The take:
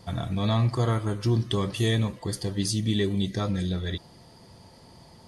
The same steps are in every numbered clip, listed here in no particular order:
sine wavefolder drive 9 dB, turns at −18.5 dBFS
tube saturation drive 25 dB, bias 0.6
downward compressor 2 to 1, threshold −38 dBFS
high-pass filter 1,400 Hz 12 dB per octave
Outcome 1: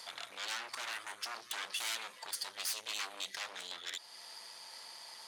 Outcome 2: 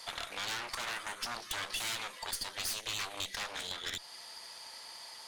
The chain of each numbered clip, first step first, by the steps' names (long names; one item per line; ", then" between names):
sine wavefolder, then downward compressor, then tube saturation, then high-pass filter
sine wavefolder, then high-pass filter, then tube saturation, then downward compressor